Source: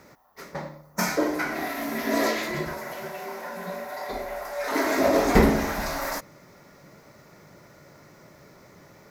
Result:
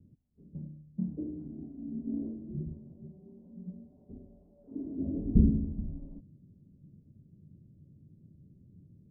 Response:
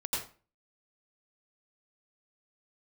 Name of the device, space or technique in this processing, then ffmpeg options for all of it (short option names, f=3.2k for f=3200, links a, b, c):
the neighbour's flat through the wall: -filter_complex "[0:a]asettb=1/sr,asplit=3[a][b][c];[a]atrim=end=4.124[d];[b]atrim=start=4.12:end=4.78,asetpts=PTS-STARTPTS,afade=t=in:d=0.004:c=qsin,afade=t=out:st=0.656:d=0.004:c=qsin,highpass=f=120:p=1[e];[c]atrim=start=4.776[f];[d][e]acrossfade=d=0.004:c1=hsin:c2=qsin[g];[g][f]acrossfade=d=0.004:c1=qsin:c2=hsin,lowpass=f=240:w=0.5412,lowpass=f=240:w=1.3066,equalizer=f=91:t=o:w=0.56:g=6.5,volume=-1.5dB"